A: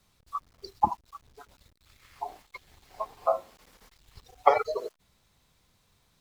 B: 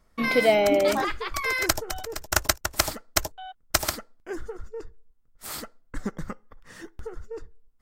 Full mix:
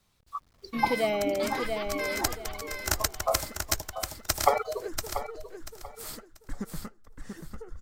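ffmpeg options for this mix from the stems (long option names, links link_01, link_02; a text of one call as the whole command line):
ffmpeg -i stem1.wav -i stem2.wav -filter_complex "[0:a]volume=-2.5dB,asplit=2[link_01][link_02];[link_02]volume=-11dB[link_03];[1:a]bass=frequency=250:gain=5,treble=frequency=4000:gain=4,adelay=550,volume=-8dB,asplit=2[link_04][link_05];[link_05]volume=-5.5dB[link_06];[link_03][link_06]amix=inputs=2:normalize=0,aecho=0:1:687|1374|2061|2748:1|0.25|0.0625|0.0156[link_07];[link_01][link_04][link_07]amix=inputs=3:normalize=0" out.wav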